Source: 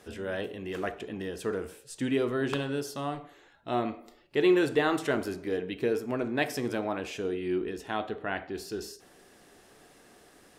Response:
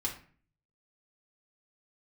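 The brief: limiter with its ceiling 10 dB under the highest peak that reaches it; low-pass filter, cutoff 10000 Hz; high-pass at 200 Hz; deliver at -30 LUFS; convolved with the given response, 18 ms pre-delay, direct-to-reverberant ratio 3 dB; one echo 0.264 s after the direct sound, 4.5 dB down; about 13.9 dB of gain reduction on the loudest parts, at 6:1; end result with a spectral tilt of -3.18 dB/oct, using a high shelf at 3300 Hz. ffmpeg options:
-filter_complex "[0:a]highpass=200,lowpass=10k,highshelf=f=3.3k:g=8.5,acompressor=threshold=-34dB:ratio=6,alimiter=level_in=5.5dB:limit=-24dB:level=0:latency=1,volume=-5.5dB,aecho=1:1:264:0.596,asplit=2[a][b];[1:a]atrim=start_sample=2205,adelay=18[c];[b][c]afir=irnorm=-1:irlink=0,volume=-6dB[d];[a][d]amix=inputs=2:normalize=0,volume=7dB"

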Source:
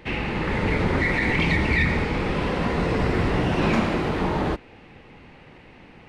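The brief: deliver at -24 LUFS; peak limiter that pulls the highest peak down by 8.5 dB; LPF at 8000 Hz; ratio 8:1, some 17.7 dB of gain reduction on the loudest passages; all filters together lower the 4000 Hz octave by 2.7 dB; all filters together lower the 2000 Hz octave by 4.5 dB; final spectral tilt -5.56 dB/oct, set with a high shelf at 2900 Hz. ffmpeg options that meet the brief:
-af "lowpass=8k,equalizer=f=2k:t=o:g=-6,highshelf=f=2.9k:g=6.5,equalizer=f=4k:t=o:g=-6,acompressor=threshold=-37dB:ratio=8,volume=20.5dB,alimiter=limit=-14.5dB:level=0:latency=1"

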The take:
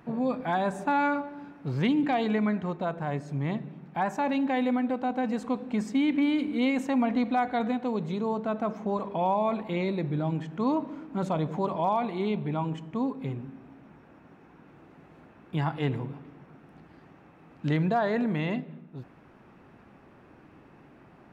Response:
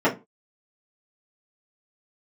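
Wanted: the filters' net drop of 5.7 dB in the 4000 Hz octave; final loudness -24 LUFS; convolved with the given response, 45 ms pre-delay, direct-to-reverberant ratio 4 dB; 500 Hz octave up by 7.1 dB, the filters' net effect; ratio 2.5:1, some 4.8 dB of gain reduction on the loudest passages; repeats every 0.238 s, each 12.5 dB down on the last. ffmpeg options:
-filter_complex "[0:a]equalizer=f=500:t=o:g=9,equalizer=f=4k:t=o:g=-8,acompressor=threshold=-25dB:ratio=2.5,aecho=1:1:238|476|714:0.237|0.0569|0.0137,asplit=2[a][b];[1:a]atrim=start_sample=2205,adelay=45[c];[b][c]afir=irnorm=-1:irlink=0,volume=-22dB[d];[a][d]amix=inputs=2:normalize=0,volume=1.5dB"

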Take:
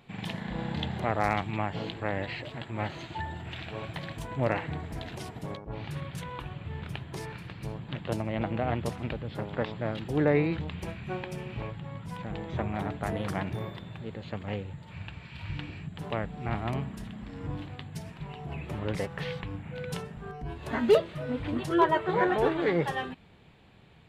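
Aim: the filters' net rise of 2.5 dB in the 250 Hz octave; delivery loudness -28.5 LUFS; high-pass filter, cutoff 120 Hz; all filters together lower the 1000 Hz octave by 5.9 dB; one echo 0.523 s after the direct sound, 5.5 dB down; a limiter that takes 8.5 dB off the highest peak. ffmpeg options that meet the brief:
-af "highpass=120,equalizer=f=250:t=o:g=4.5,equalizer=f=1k:t=o:g=-8,alimiter=limit=-20dB:level=0:latency=1,aecho=1:1:523:0.531,volume=5.5dB"

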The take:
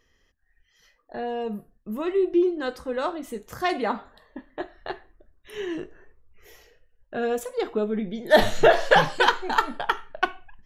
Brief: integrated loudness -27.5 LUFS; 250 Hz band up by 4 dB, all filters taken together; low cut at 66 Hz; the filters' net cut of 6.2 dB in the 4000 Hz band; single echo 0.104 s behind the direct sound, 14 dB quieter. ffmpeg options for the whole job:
-af "highpass=66,equalizer=f=250:t=o:g=6,equalizer=f=4k:t=o:g=-8.5,aecho=1:1:104:0.2,volume=-4dB"

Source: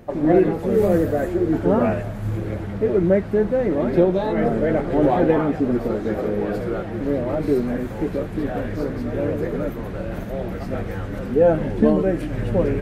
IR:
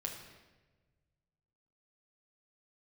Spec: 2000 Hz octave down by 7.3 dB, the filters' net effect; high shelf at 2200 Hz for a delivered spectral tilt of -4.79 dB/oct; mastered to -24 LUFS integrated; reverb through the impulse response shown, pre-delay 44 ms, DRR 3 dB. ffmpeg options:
-filter_complex "[0:a]equalizer=f=2k:t=o:g=-7,highshelf=f=2.2k:g=-5.5,asplit=2[a][b];[1:a]atrim=start_sample=2205,adelay=44[c];[b][c]afir=irnorm=-1:irlink=0,volume=-2.5dB[d];[a][d]amix=inputs=2:normalize=0,volume=-4.5dB"

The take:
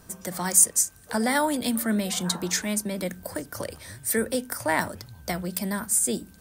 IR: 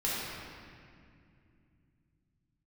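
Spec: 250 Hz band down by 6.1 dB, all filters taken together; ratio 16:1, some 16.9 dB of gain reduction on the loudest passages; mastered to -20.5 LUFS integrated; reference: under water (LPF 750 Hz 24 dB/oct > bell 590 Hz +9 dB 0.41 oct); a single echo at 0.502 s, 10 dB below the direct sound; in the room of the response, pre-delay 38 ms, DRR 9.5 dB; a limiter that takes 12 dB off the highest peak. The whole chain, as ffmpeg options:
-filter_complex "[0:a]equalizer=f=250:t=o:g=-8,acompressor=threshold=-29dB:ratio=16,alimiter=limit=-24dB:level=0:latency=1,aecho=1:1:502:0.316,asplit=2[a][b];[1:a]atrim=start_sample=2205,adelay=38[c];[b][c]afir=irnorm=-1:irlink=0,volume=-17.5dB[d];[a][d]amix=inputs=2:normalize=0,lowpass=f=750:w=0.5412,lowpass=f=750:w=1.3066,equalizer=f=590:t=o:w=0.41:g=9,volume=15.5dB"

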